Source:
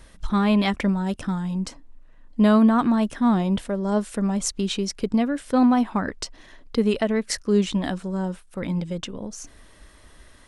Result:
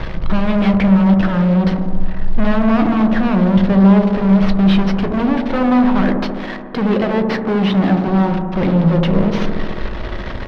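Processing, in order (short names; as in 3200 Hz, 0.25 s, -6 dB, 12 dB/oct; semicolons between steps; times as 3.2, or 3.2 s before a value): CVSD 32 kbps; 5.98–8.08 HPF 160 Hz 12 dB/oct; compressor 1.5:1, threshold -45 dBFS, peak gain reduction 11 dB; fuzz box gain 46 dB, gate -51 dBFS; air absorption 340 m; dark delay 72 ms, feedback 77%, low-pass 920 Hz, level -4.5 dB; reverb RT60 0.25 s, pre-delay 5 ms, DRR 9 dB; gain -2 dB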